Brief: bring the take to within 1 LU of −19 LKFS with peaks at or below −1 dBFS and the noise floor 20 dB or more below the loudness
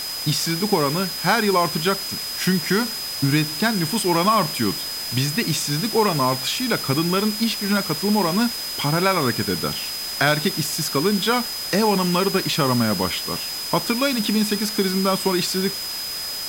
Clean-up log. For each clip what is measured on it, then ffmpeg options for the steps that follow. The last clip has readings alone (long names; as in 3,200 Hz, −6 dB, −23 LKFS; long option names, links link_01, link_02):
interfering tone 5,000 Hz; level of the tone −28 dBFS; background noise floor −29 dBFS; target noise floor −41 dBFS; integrated loudness −21.0 LKFS; sample peak −4.5 dBFS; target loudness −19.0 LKFS
→ -af "bandreject=frequency=5000:width=30"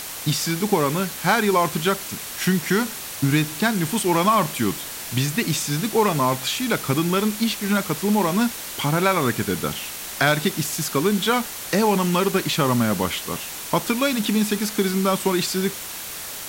interfering tone none found; background noise floor −33 dBFS; target noise floor −42 dBFS
→ -af "afftdn=noise_reduction=9:noise_floor=-33"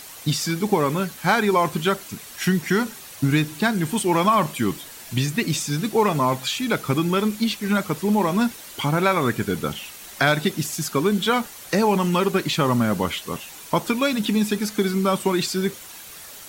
background noise floor −41 dBFS; target noise floor −43 dBFS
→ -af "afftdn=noise_reduction=6:noise_floor=-41"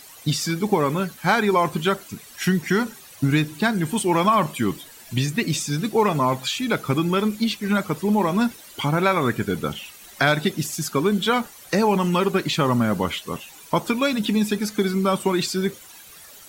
background noise floor −45 dBFS; integrated loudness −22.5 LKFS; sample peak −5.5 dBFS; target loudness −19.0 LKFS
→ -af "volume=3.5dB"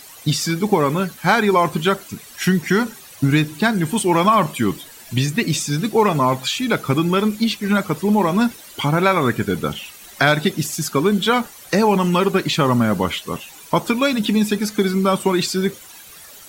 integrated loudness −19.0 LKFS; sample peak −2.0 dBFS; background noise floor −42 dBFS